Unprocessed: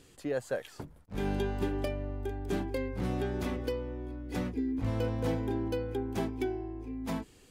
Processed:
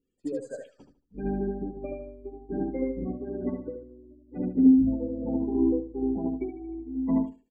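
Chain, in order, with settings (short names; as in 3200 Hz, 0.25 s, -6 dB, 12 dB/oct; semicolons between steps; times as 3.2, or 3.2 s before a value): power-law curve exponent 0.7; spectral gate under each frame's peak -15 dB strong; fifteen-band EQ 100 Hz -11 dB, 250 Hz +7 dB, 4000 Hz -5 dB; on a send: feedback echo 76 ms, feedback 46%, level -3 dB; on the sum: upward expander 2.5:1, over -44 dBFS; gain +5.5 dB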